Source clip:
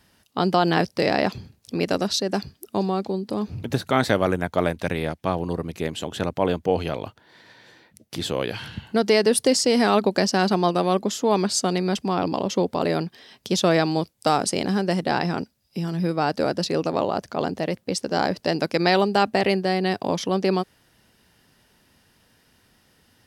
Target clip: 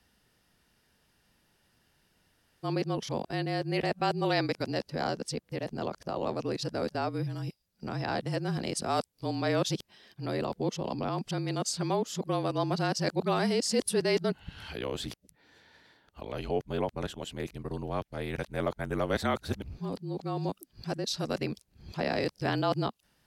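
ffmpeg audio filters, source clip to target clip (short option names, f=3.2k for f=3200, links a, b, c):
-af "areverse,afreqshift=-35,volume=-9dB"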